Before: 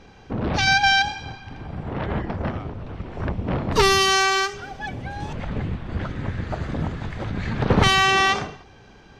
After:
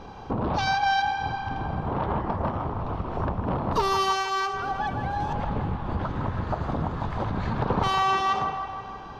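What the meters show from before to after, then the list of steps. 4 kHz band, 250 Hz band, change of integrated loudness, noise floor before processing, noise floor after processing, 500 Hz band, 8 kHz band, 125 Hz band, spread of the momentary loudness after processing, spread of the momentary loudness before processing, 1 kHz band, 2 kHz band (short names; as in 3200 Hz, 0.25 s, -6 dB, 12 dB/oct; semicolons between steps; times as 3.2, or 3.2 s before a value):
-11.5 dB, -3.5 dB, -5.5 dB, -48 dBFS, -40 dBFS, -4.5 dB, -13.5 dB, -3.0 dB, 8 LU, 18 LU, -0.5 dB, -9.5 dB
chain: graphic EQ 1000/2000/8000 Hz +10/-9/-8 dB; compressor 3:1, threshold -31 dBFS, peak gain reduction 15.5 dB; on a send: band-limited delay 0.158 s, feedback 63%, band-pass 1300 Hz, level -6.5 dB; on the sum: gain +4.5 dB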